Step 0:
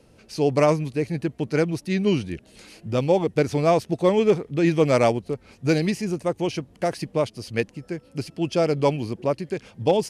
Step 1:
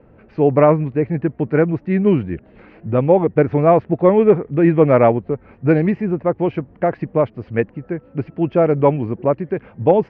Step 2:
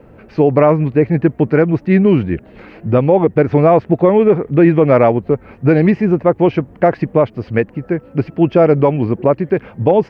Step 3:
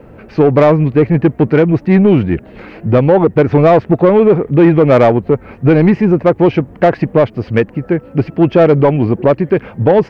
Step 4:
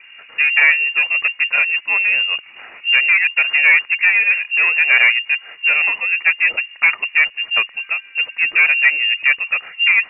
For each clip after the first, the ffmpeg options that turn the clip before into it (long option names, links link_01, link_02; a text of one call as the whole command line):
ffmpeg -i in.wav -af "lowpass=frequency=1900:width=0.5412,lowpass=frequency=1900:width=1.3066,volume=6.5dB" out.wav
ffmpeg -i in.wav -af "bass=frequency=250:gain=-1,treble=frequency=4000:gain=11,alimiter=limit=-9dB:level=0:latency=1:release=145,volume=7dB" out.wav
ffmpeg -i in.wav -af "acontrast=43,volume=-1dB" out.wav
ffmpeg -i in.wav -af "equalizer=frequency=100:width_type=o:width=0.67:gain=8,equalizer=frequency=250:width_type=o:width=0.67:gain=-10,equalizer=frequency=1000:width_type=o:width=0.67:gain=11,lowpass=frequency=2500:width_type=q:width=0.5098,lowpass=frequency=2500:width_type=q:width=0.6013,lowpass=frequency=2500:width_type=q:width=0.9,lowpass=frequency=2500:width_type=q:width=2.563,afreqshift=-2900,volume=-6dB" out.wav